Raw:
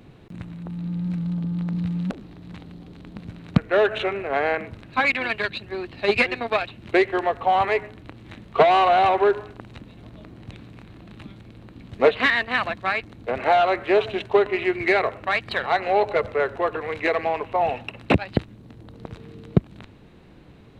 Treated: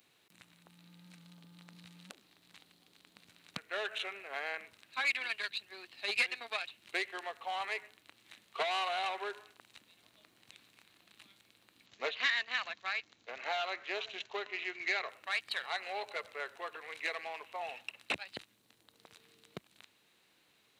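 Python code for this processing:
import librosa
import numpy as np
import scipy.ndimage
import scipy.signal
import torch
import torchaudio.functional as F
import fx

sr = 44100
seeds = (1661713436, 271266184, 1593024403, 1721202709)

y = fx.resample_bad(x, sr, factor=3, down='none', up='filtered', at=(11.86, 15.09))
y = np.diff(y, prepend=0.0)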